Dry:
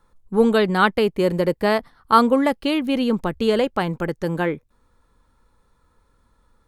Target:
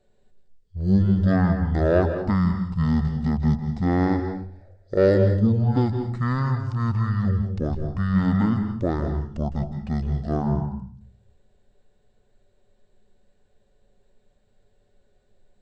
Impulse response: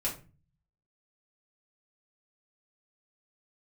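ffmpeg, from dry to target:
-filter_complex "[0:a]acontrast=31,asplit=2[a][b];[1:a]atrim=start_sample=2205,asetrate=70560,aresample=44100,adelay=67[c];[b][c]afir=irnorm=-1:irlink=0,volume=-7dB[d];[a][d]amix=inputs=2:normalize=0,asetrate=18846,aresample=44100,volume=-8dB"

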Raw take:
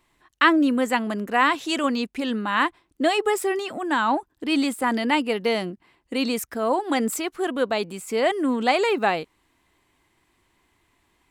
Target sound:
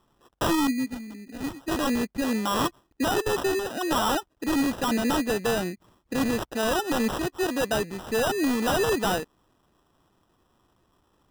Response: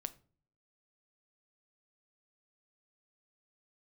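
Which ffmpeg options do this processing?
-filter_complex "[0:a]asettb=1/sr,asplit=3[a][b][c];[a]atrim=end=0.674[d];[b]atrim=start=0.67:end=1.68,asetpts=PTS-STARTPTS,afade=t=in:d=0.004:c=qsin,afade=t=out:st=1.006:d=0.004:c=qsin,asplit=3[e][f][g];[e]bandpass=f=270:t=q:w=8,volume=0dB[h];[f]bandpass=f=2.29k:t=q:w=8,volume=-6dB[i];[g]bandpass=f=3.01k:t=q:w=8,volume=-9dB[j];[h][i][j]amix=inputs=3:normalize=0[k];[c]atrim=start=1.676[l];[d][k]acrossfade=d=0.004:c1=hsin:c2=qsin[m];[m][l]acrossfade=d=0.004:c1=qsin:c2=hsin,acrusher=samples=20:mix=1:aa=0.000001,aeval=exprs='0.119*(abs(mod(val(0)/0.119+3,4)-2)-1)':c=same"

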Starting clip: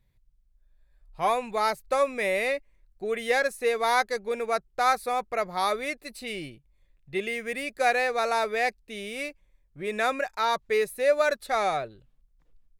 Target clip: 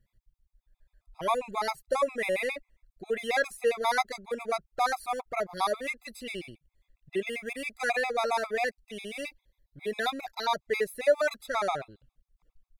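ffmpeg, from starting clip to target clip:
-filter_complex "[0:a]asettb=1/sr,asplit=3[a][b][c];[a]atrim=end=9.274[d];[b]atrim=start=9.27:end=10.46,asetpts=PTS-STARTPTS,afade=t=in:d=0.004:c=qsin,afade=t=out:st=1.186:d=0.004:c=qsin,equalizer=f=1.25k:t=o:w=0.33:g=-10,equalizer=f=2.5k:t=o:w=0.33:g=-4,equalizer=f=4k:t=o:w=0.33:g=11,equalizer=f=8k:t=o:w=0.33:g=-7,equalizer=f=12.5k:t=o:w=0.33:g=6[e];[c]atrim=start=10.456[f];[d][e]acrossfade=d=0.004:c1=hsin:c2=qsin[g];[g][f]acrossfade=d=0.004:c1=qsin:c2=hsin,afftfilt=real='re*gt(sin(2*PI*7.4*pts/sr)*(1-2*mod(floor(b*sr/1024/670),2)),0)':imag='im*gt(sin(2*PI*7.4*pts/sr)*(1-2*mod(floor(b*sr/1024/670),2)),0)':win_size=1024:overlap=0.75"

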